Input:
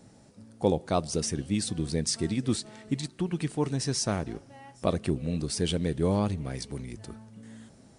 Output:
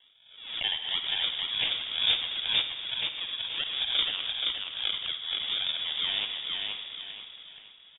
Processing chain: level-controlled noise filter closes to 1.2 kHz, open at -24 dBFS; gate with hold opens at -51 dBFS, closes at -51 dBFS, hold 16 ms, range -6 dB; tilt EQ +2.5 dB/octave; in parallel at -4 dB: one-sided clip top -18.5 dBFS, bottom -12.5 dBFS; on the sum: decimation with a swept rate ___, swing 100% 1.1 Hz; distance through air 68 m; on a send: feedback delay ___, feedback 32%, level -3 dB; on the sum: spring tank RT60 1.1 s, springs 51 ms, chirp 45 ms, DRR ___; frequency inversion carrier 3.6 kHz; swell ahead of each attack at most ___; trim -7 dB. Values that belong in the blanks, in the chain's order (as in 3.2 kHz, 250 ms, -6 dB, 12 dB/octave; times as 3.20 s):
37×, 476 ms, 8 dB, 77 dB/s